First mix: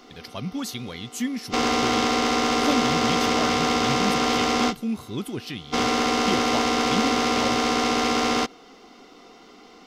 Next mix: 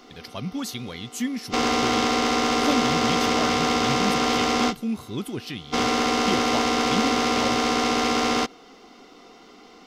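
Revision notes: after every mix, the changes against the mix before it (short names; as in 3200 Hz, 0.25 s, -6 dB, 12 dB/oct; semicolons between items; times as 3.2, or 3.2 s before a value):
none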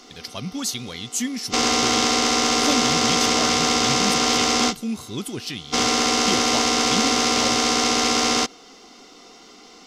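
master: add bell 7000 Hz +11 dB 1.7 oct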